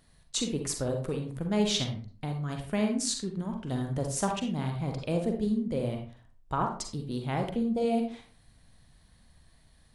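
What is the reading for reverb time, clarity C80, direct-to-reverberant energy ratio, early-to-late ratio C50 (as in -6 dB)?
0.40 s, 10.5 dB, 3.0 dB, 5.5 dB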